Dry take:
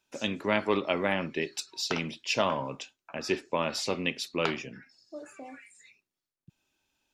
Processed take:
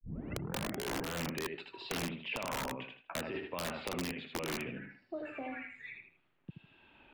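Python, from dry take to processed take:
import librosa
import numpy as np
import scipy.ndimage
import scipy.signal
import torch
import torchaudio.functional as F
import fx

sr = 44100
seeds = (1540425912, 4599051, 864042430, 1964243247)

p1 = fx.tape_start_head(x, sr, length_s=1.25)
p2 = fx.over_compress(p1, sr, threshold_db=-32.0, ratio=-1.0)
p3 = scipy.signal.sosfilt(scipy.signal.cheby2(4, 40, 5400.0, 'lowpass', fs=sr, output='sos'), p2)
p4 = p3 + fx.echo_feedback(p3, sr, ms=78, feedback_pct=23, wet_db=-6, dry=0)
p5 = fx.vibrato(p4, sr, rate_hz=0.64, depth_cents=67.0)
p6 = (np.mod(10.0 ** (24.0 / 20.0) * p5 + 1.0, 2.0) - 1.0) / 10.0 ** (24.0 / 20.0)
p7 = fx.band_squash(p6, sr, depth_pct=70)
y = F.gain(torch.from_numpy(p7), -5.0).numpy()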